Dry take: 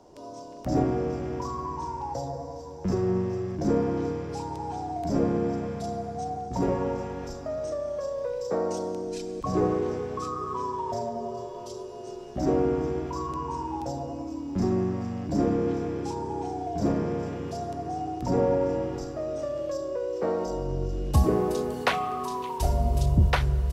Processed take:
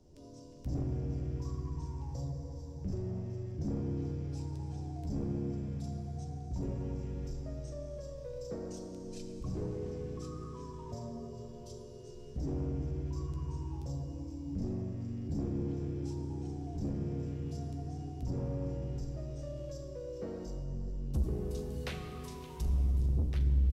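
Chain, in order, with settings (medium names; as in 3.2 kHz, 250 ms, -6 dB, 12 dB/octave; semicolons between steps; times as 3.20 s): amplifier tone stack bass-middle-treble 10-0-1; in parallel at +2 dB: compression, threshold -47 dBFS, peak gain reduction 21 dB; on the sum: saturation -34 dBFS, distortion -7 dB; doubling 14 ms -11 dB; plate-style reverb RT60 3.5 s, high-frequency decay 0.9×, DRR 7 dB; trim +4.5 dB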